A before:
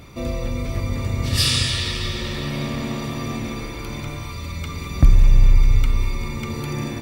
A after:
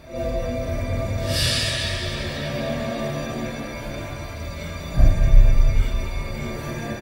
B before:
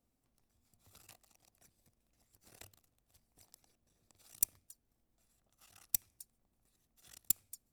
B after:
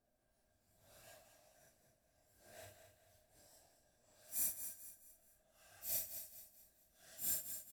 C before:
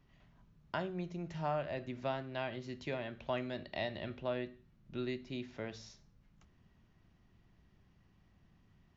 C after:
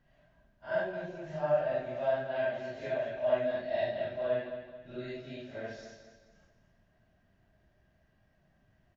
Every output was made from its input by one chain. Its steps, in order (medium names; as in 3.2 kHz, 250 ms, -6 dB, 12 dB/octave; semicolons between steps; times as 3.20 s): phase randomisation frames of 200 ms; small resonant body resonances 630/1600 Hz, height 16 dB, ringing for 35 ms; on a send: feedback delay 216 ms, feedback 39%, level -9.5 dB; on the sum: trim -3 dB